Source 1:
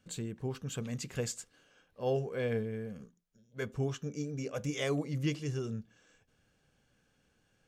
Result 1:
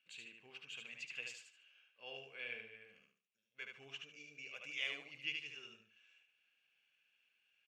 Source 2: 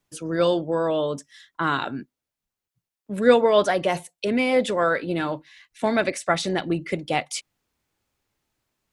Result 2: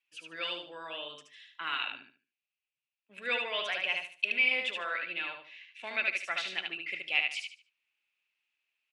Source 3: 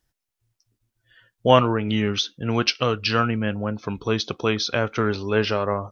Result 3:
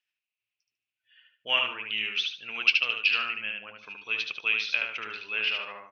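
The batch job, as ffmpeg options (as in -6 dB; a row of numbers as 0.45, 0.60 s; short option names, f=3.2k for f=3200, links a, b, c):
-filter_complex "[0:a]bandpass=f=2.6k:t=q:w=7:csg=0,asplit=2[a][b];[b]aecho=0:1:74|148|222|296:0.631|0.17|0.046|0.0124[c];[a][c]amix=inputs=2:normalize=0,volume=7dB"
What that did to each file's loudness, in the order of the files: -10.0, -8.5, -4.0 LU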